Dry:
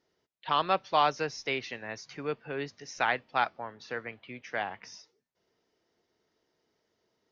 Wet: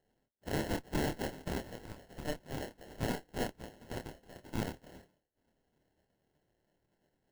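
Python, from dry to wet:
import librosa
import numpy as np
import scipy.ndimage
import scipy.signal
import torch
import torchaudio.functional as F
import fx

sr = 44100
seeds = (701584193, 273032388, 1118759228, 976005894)

y = fx.spec_gate(x, sr, threshold_db=-15, keep='weak')
y = fx.tube_stage(y, sr, drive_db=39.0, bias=0.8)
y = fx.sample_hold(y, sr, seeds[0], rate_hz=1200.0, jitter_pct=0)
y = fx.doubler(y, sr, ms=27.0, db=-6)
y = y * librosa.db_to_amplitude(10.5)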